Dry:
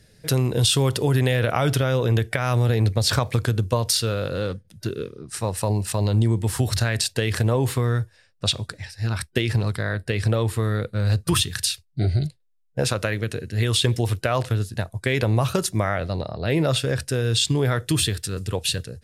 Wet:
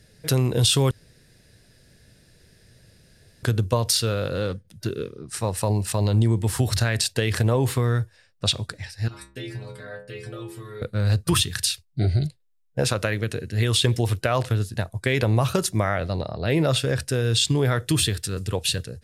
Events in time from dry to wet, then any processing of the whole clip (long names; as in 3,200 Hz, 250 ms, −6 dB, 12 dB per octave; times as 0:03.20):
0:00.91–0:03.43: fill with room tone
0:09.08–0:10.82: stiff-string resonator 62 Hz, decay 0.78 s, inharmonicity 0.008